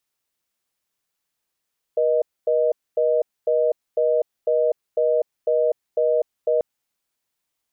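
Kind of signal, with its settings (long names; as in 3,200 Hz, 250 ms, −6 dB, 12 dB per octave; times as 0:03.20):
call progress tone reorder tone, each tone −19 dBFS 4.64 s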